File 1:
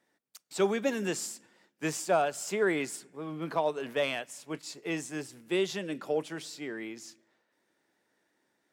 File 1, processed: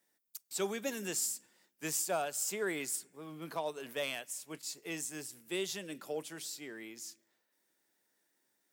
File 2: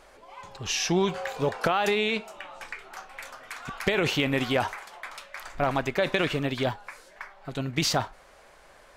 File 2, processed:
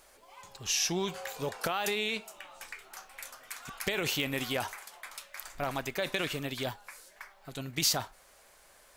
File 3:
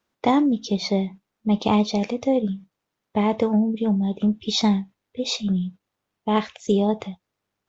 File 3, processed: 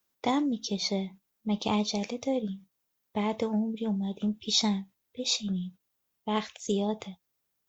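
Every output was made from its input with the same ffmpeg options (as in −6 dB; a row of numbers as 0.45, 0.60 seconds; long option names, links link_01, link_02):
-af "aemphasis=mode=production:type=75fm,volume=-8dB"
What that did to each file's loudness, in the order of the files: −5.0, −5.5, −7.5 LU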